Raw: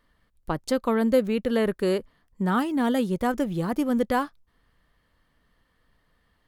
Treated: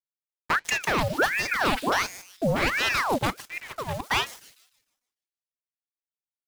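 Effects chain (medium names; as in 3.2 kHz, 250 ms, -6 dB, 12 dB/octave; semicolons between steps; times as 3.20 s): local Wiener filter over 25 samples; frequency weighting D; gate -33 dBFS, range -17 dB; resonant low shelf 180 Hz +9 dB, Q 3; 3.30–4.11 s: slow attack 527 ms; waveshaping leveller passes 3; 1.08–2.70 s: phase dispersion highs, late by 93 ms, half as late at 420 Hz; word length cut 6-bit, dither none; flange 0.62 Hz, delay 4.9 ms, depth 1.8 ms, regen -80%; on a send: feedback echo behind a high-pass 150 ms, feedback 37%, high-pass 5.4 kHz, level -3 dB; on the sum: ring modulator with a swept carrier 1.3 kHz, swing 75%, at 1.4 Hz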